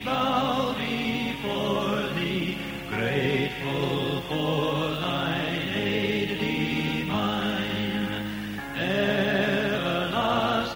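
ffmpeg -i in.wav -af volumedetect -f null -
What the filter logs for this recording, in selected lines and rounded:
mean_volume: -26.6 dB
max_volume: -11.3 dB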